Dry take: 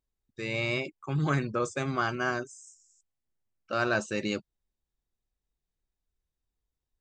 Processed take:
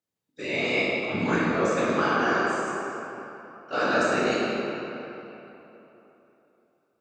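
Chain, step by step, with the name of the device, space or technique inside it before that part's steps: whispering ghost (whisper effect; high-pass 220 Hz 12 dB/octave; reverberation RT60 3.5 s, pre-delay 16 ms, DRR -6 dB); 1.10–2.47 s: low-pass 7.5 kHz 24 dB/octave

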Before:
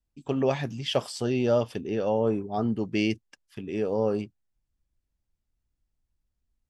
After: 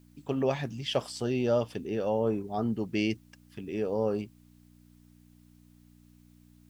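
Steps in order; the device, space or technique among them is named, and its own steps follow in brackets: video cassette with head-switching buzz (mains buzz 60 Hz, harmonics 5, -55 dBFS -1 dB/octave; white noise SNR 39 dB); trim -3 dB

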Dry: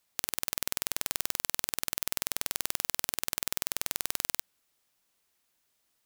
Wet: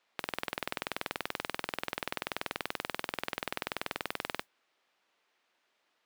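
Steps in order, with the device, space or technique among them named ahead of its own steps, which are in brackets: carbon microphone (band-pass 340–3000 Hz; saturation -24 dBFS, distortion -10 dB; modulation noise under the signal 17 dB); trim +7 dB

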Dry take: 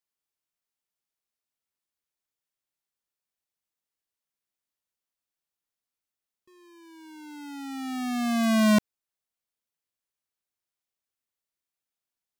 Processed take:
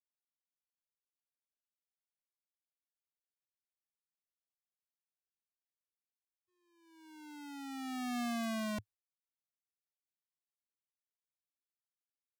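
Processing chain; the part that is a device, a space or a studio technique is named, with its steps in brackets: car stereo with a boomy subwoofer (resonant low shelf 130 Hz +7 dB, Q 3; peak limiter -26 dBFS, peak gain reduction 10.5 dB); expander -47 dBFS; trim -6.5 dB

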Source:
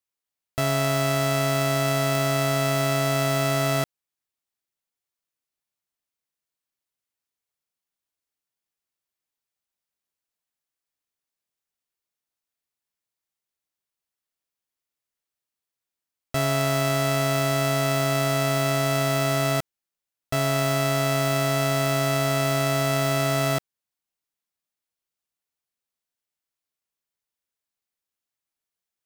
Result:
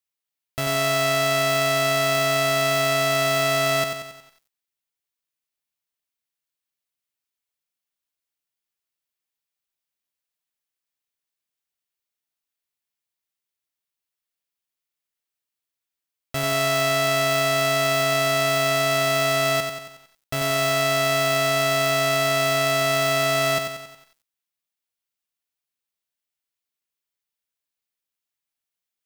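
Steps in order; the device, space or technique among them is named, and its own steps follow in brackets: presence and air boost (peaking EQ 2.9 kHz +4.5 dB 1.7 oct; treble shelf 9.9 kHz +6 dB); bit-crushed delay 91 ms, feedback 55%, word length 8-bit, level -6.5 dB; trim -3 dB

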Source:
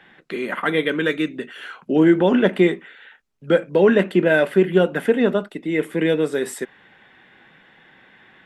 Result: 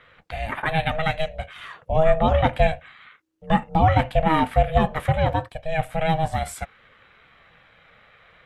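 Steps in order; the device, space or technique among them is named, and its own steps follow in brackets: alien voice (ring modulator 320 Hz; flange 0.29 Hz, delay 0.6 ms, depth 1.4 ms, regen -73%); trim +4.5 dB

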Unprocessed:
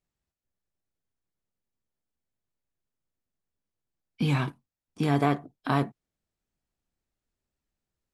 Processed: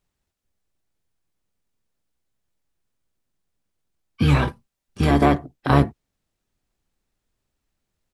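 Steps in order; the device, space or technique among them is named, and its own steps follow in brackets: 4.42–5.11 s: comb 5.1 ms, depth 64%; octave pedal (harmony voices -12 st -3 dB); trim +6.5 dB

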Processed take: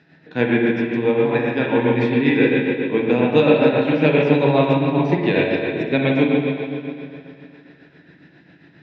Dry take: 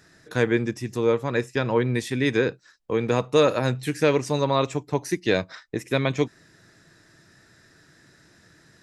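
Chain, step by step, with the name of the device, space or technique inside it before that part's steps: combo amplifier with spring reverb and tremolo (spring tank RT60 2.6 s, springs 41/51/57 ms, chirp 20 ms, DRR -4.5 dB; tremolo 7.4 Hz, depth 48%; cabinet simulation 99–3700 Hz, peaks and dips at 110 Hz -9 dB, 160 Hz +8 dB, 270 Hz +7 dB, 810 Hz +4 dB, 1.2 kHz -9 dB, 2.6 kHz +6 dB); trim +1.5 dB

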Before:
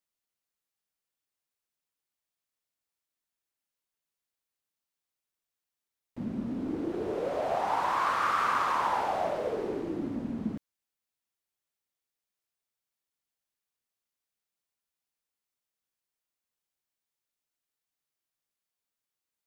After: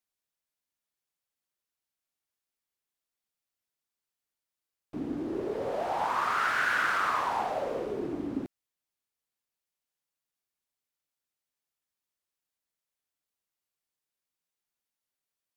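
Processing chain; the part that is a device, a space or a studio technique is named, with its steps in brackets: nightcore (tape speed +25%)

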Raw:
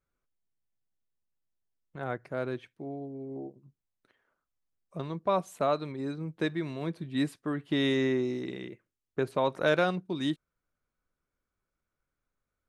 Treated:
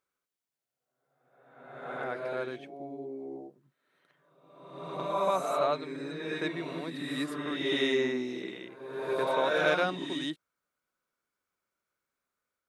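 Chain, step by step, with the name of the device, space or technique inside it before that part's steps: ghost voice (reverse; reverberation RT60 1.2 s, pre-delay 66 ms, DRR -0.5 dB; reverse; high-pass 540 Hz 6 dB/octave)

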